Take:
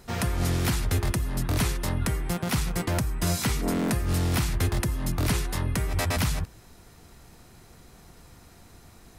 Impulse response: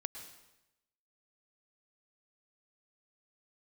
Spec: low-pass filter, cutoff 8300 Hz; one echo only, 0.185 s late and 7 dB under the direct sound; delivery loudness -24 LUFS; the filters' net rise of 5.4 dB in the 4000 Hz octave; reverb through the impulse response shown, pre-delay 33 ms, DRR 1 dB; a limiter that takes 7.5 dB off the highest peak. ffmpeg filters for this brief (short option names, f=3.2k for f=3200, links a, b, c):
-filter_complex "[0:a]lowpass=8.3k,equalizer=f=4k:t=o:g=7,alimiter=limit=-19.5dB:level=0:latency=1,aecho=1:1:185:0.447,asplit=2[a][b];[1:a]atrim=start_sample=2205,adelay=33[c];[b][c]afir=irnorm=-1:irlink=0,volume=0.5dB[d];[a][d]amix=inputs=2:normalize=0,volume=1.5dB"